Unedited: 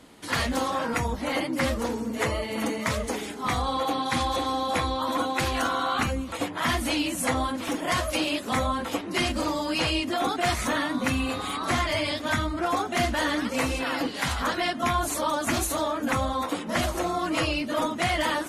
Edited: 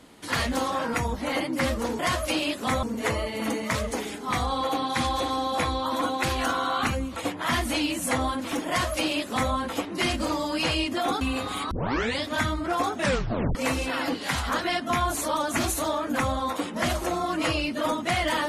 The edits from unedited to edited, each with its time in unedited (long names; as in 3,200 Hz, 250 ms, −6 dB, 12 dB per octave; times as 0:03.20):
0:07.84–0:08.68: duplicate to 0:01.99
0:10.37–0:11.14: remove
0:11.64: tape start 0.48 s
0:12.90: tape stop 0.58 s